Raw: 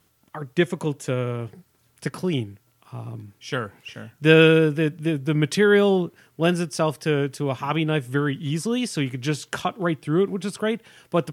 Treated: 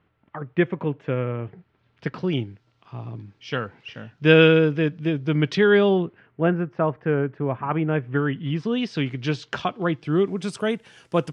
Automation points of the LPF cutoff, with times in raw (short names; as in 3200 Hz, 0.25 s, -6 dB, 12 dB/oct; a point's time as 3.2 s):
LPF 24 dB/oct
1.43 s 2600 Hz
2.43 s 4700 Hz
5.72 s 4700 Hz
6.52 s 1900 Hz
7.8 s 1900 Hz
9.05 s 4900 Hz
9.91 s 4900 Hz
10.54 s 8800 Hz